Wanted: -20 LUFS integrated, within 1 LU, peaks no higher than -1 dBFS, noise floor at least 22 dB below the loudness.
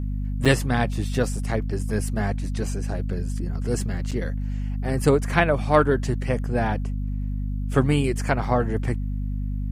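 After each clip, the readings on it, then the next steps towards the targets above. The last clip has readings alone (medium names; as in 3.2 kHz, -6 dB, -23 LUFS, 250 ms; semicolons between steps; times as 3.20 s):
dropouts 2; longest dropout 6.3 ms; hum 50 Hz; highest harmonic 250 Hz; hum level -24 dBFS; loudness -24.5 LUFS; peak level -2.5 dBFS; loudness target -20.0 LUFS
-> interpolate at 0.45/4.11 s, 6.3 ms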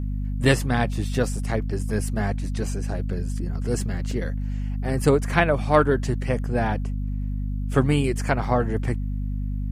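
dropouts 0; hum 50 Hz; highest harmonic 250 Hz; hum level -24 dBFS
-> hum notches 50/100/150/200/250 Hz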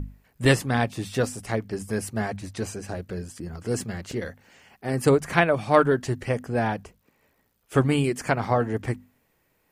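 hum not found; loudness -25.5 LUFS; peak level -2.5 dBFS; loudness target -20.0 LUFS
-> trim +5.5 dB; peak limiter -1 dBFS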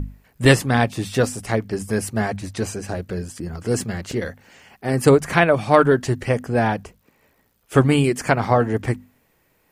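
loudness -20.5 LUFS; peak level -1.0 dBFS; noise floor -64 dBFS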